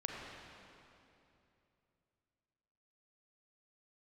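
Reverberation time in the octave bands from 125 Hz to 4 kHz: 3.7 s, 3.2 s, 3.0 s, 2.7 s, 2.5 s, 2.3 s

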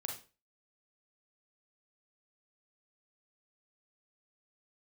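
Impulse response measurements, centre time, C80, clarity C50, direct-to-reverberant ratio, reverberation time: 26 ms, 12.0 dB, 6.0 dB, 1.0 dB, 0.35 s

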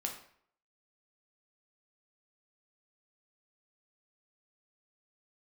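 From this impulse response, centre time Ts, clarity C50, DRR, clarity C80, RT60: 22 ms, 7.5 dB, 1.0 dB, 10.5 dB, 0.60 s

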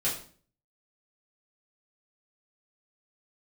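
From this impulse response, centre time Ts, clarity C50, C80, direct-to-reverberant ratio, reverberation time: 30 ms, 7.0 dB, 11.0 dB, -9.5 dB, 0.45 s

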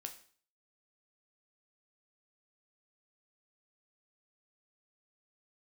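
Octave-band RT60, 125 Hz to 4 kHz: 0.50 s, 0.50 s, 0.45 s, 0.45 s, 0.45 s, 0.45 s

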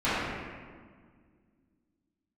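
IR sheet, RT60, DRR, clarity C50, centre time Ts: 1.8 s, -16.0 dB, -4.0 dB, 129 ms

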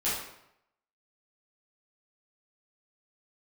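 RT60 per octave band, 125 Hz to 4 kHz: 0.85 s, 0.75 s, 0.80 s, 0.80 s, 0.70 s, 0.60 s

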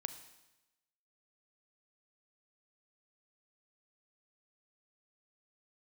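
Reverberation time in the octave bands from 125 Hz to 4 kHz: 1.0 s, 1.0 s, 1.0 s, 1.0 s, 1.0 s, 1.0 s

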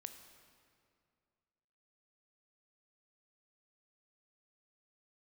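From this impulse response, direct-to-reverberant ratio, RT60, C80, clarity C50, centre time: 7.0 dB, 2.3 s, 9.5 dB, 8.5 dB, 27 ms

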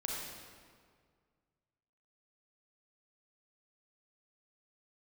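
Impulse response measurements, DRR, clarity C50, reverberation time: -3.0 dB, -1.5 dB, 1.9 s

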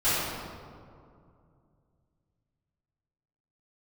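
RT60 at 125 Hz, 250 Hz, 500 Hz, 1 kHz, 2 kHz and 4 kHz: 3.5 s, 2.9 s, 2.5 s, 2.2 s, 1.5 s, 1.1 s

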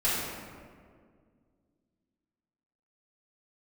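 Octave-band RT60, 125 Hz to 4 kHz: 2.5 s, 2.8 s, 2.2 s, 1.7 s, 1.5 s, 1.0 s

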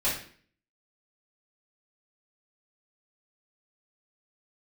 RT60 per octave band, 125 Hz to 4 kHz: 0.60 s, 0.60 s, 0.50 s, 0.45 s, 0.50 s, 0.45 s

